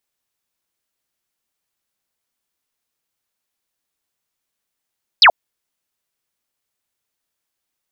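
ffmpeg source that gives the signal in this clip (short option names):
-f lavfi -i "aevalsrc='0.596*clip(t/0.002,0,1)*clip((0.08-t)/0.002,0,1)*sin(2*PI*5300*0.08/log(590/5300)*(exp(log(590/5300)*t/0.08)-1))':d=0.08:s=44100"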